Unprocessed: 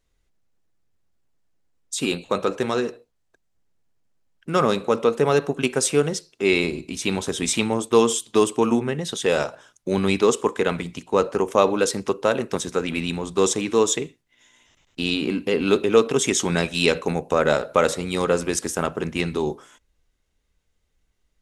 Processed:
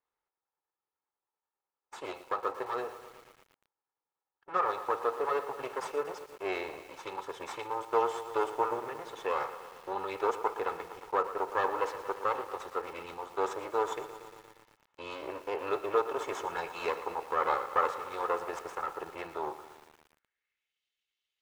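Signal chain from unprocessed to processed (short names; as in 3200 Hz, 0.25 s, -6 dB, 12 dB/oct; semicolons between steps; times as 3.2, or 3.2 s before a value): minimum comb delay 2.3 ms; band-pass sweep 1000 Hz -> 3100 Hz, 19.86–20.82; lo-fi delay 0.116 s, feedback 80%, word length 8-bit, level -13 dB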